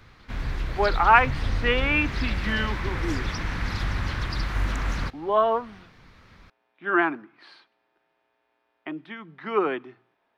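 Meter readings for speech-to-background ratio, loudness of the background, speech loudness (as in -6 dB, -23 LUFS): 5.5 dB, -30.0 LUFS, -24.5 LUFS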